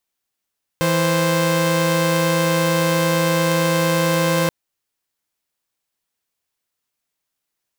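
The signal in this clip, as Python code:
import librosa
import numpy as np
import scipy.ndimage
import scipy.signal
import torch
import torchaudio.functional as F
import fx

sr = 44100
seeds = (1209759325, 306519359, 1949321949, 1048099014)

y = fx.chord(sr, length_s=3.68, notes=(52, 72), wave='saw', level_db=-16.0)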